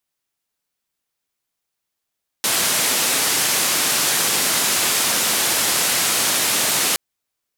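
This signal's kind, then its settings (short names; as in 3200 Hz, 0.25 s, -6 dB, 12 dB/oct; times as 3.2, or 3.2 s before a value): noise band 150–12000 Hz, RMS -19 dBFS 4.52 s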